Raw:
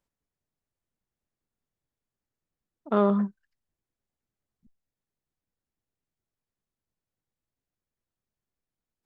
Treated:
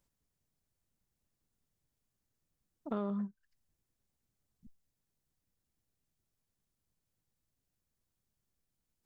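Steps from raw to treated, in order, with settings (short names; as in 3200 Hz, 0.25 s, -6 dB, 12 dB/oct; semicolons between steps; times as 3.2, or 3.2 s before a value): tone controls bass +6 dB, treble +6 dB; compressor 3:1, threshold -39 dBFS, peak gain reduction 17.5 dB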